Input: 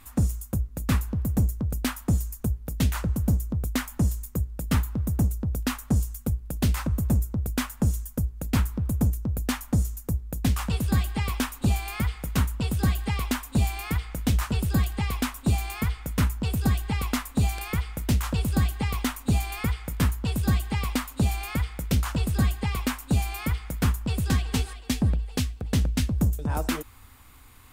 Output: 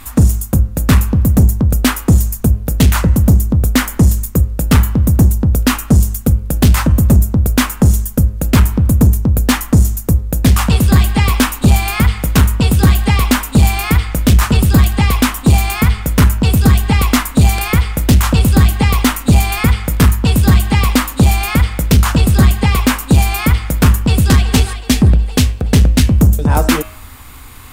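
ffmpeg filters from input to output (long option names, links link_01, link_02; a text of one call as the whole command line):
ffmpeg -i in.wav -af "bandreject=frequency=104.3:width_type=h:width=4,bandreject=frequency=208.6:width_type=h:width=4,bandreject=frequency=312.9:width_type=h:width=4,bandreject=frequency=417.2:width_type=h:width=4,bandreject=frequency=521.5:width_type=h:width=4,bandreject=frequency=625.8:width_type=h:width=4,bandreject=frequency=730.1:width_type=h:width=4,bandreject=frequency=834.4:width_type=h:width=4,bandreject=frequency=938.7:width_type=h:width=4,bandreject=frequency=1043:width_type=h:width=4,bandreject=frequency=1147.3:width_type=h:width=4,bandreject=frequency=1251.6:width_type=h:width=4,bandreject=frequency=1355.9:width_type=h:width=4,bandreject=frequency=1460.2:width_type=h:width=4,bandreject=frequency=1564.5:width_type=h:width=4,bandreject=frequency=1668.8:width_type=h:width=4,bandreject=frequency=1773.1:width_type=h:width=4,bandreject=frequency=1877.4:width_type=h:width=4,bandreject=frequency=1981.7:width_type=h:width=4,bandreject=frequency=2086:width_type=h:width=4,bandreject=frequency=2190.3:width_type=h:width=4,bandreject=frequency=2294.6:width_type=h:width=4,bandreject=frequency=2398.9:width_type=h:width=4,bandreject=frequency=2503.2:width_type=h:width=4,bandreject=frequency=2607.5:width_type=h:width=4,bandreject=frequency=2711.8:width_type=h:width=4,bandreject=frequency=2816.1:width_type=h:width=4,bandreject=frequency=2920.4:width_type=h:width=4,bandreject=frequency=3024.7:width_type=h:width=4,bandreject=frequency=3129:width_type=h:width=4,aeval=exprs='0.299*sin(PI/2*1.78*val(0)/0.299)':channel_layout=same,volume=7.5dB" out.wav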